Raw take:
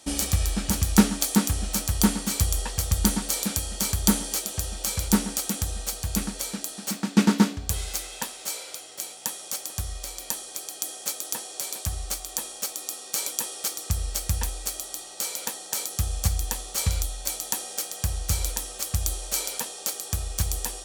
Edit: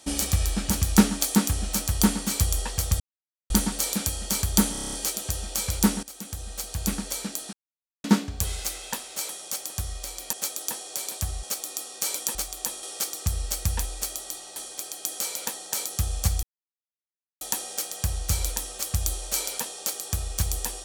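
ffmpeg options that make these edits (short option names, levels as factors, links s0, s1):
-filter_complex "[0:a]asplit=21[s0][s1][s2][s3][s4][s5][s6][s7][s8][s9][s10][s11][s12][s13][s14][s15][s16][s17][s18][s19][s20];[s0]atrim=end=3,asetpts=PTS-STARTPTS,afade=t=out:st=2.996:d=0.004:c=hsin,apad=pad_dur=0.5[s21];[s1]atrim=start=3:end=4.252,asetpts=PTS-STARTPTS,afade=t=in:d=0.004:c=hsin[s22];[s2]atrim=start=4.218:end=4.252[s23];[s3]atrim=start=4.218:end=4.252[s24];[s4]atrim=start=4.218:end=4.252[s25];[s5]atrim=start=4.218:end=4.252[s26];[s6]atrim=start=4.218:end=4.252[s27];[s7]atrim=start=4.218:end=4.252[s28];[s8]atrim=start=4.218:end=5.32,asetpts=PTS-STARTPTS,afade=t=out:st=1.098:d=0.004:c=hsin:silence=0.133352[s29];[s9]atrim=start=5.32:end=6.82,asetpts=PTS-STARTPTS,afade=t=in:d=0.89:silence=0.133352,afade=t=out:st=1.496:d=0.004:c=hsin[s30];[s10]atrim=start=6.82:end=7.33,asetpts=PTS-STARTPTS,volume=0[s31];[s11]atrim=start=7.33:end=8.582,asetpts=PTS-STARTPTS,afade=t=in:d=0.004:c=hsin[s32];[s12]atrim=start=9.288:end=10.332[s33];[s13]atrim=start=10.968:end=12.072[s34];[s14]atrim=start=12.548:end=13.472[s35];[s15]atrim=start=12.068:end=12.552[s36];[s16]atrim=start=13.468:end=15.202[s37];[s17]atrim=start=10.328:end=10.972[s38];[s18]atrim=start=15.198:end=16.43,asetpts=PTS-STARTPTS,afade=t=out:st=1.228:d=0.004:c=hsin[s39];[s19]atrim=start=16.43:end=17.41,asetpts=PTS-STARTPTS,volume=0[s40];[s20]atrim=start=17.41,asetpts=PTS-STARTPTS,afade=t=in:d=0.004:c=hsin[s41];[s21][s22]concat=n=2:v=0:a=1[s42];[s42][s23]acrossfade=d=0.004:c1=hsin:c2=hsin[s43];[s43][s24]acrossfade=d=0.004:c1=hsin:c2=hsin[s44];[s44][s25]acrossfade=d=0.004:c1=hsin:c2=hsin[s45];[s45][s26]acrossfade=d=0.004:c1=hsin:c2=hsin[s46];[s46][s27]acrossfade=d=0.004:c1=hsin:c2=hsin[s47];[s47][s28]acrossfade=d=0.004:c1=hsin:c2=hsin[s48];[s29][s30][s31][s32]concat=n=4:v=0:a=1[s49];[s48][s49]acrossfade=d=0.004:c1=hsin:c2=hsin[s50];[s50][s33]acrossfade=d=0.004:c1=hsin:c2=hsin[s51];[s51][s34]acrossfade=d=0.004:c1=hsin:c2=hsin[s52];[s52][s35]acrossfade=d=0.004:c1=hsin:c2=hsin[s53];[s53][s36]acrossfade=d=0.004:c1=hsin:c2=hsin[s54];[s54][s37]acrossfade=d=0.004:c1=hsin:c2=hsin[s55];[s55][s38]acrossfade=d=0.004:c1=hsin:c2=hsin[s56];[s39][s40][s41]concat=n=3:v=0:a=1[s57];[s56][s57]acrossfade=d=0.004:c1=hsin:c2=hsin"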